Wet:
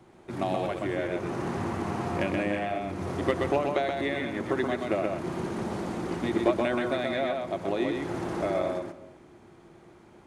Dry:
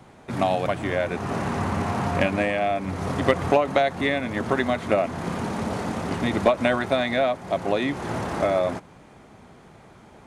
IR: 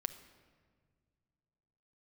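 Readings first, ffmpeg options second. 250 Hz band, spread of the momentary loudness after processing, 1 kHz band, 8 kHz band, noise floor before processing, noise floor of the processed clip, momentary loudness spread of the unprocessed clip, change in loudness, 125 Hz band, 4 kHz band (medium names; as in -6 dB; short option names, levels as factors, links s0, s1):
-3.5 dB, 6 LU, -6.5 dB, -7.0 dB, -50 dBFS, -54 dBFS, 7 LU, -5.0 dB, -6.5 dB, -7.0 dB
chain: -filter_complex "[0:a]equalizer=f=350:w=5.5:g=13,asplit=2[s0][s1];[1:a]atrim=start_sample=2205,afade=t=out:st=0.41:d=0.01,atrim=end_sample=18522,adelay=127[s2];[s1][s2]afir=irnorm=-1:irlink=0,volume=0.75[s3];[s0][s3]amix=inputs=2:normalize=0,volume=0.376"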